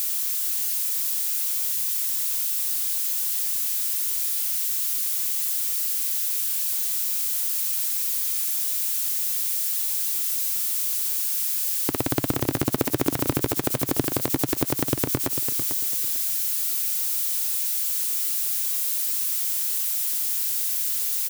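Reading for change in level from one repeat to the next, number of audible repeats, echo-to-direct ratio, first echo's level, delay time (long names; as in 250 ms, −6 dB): −12.5 dB, 2, −9.5 dB, −9.5 dB, 447 ms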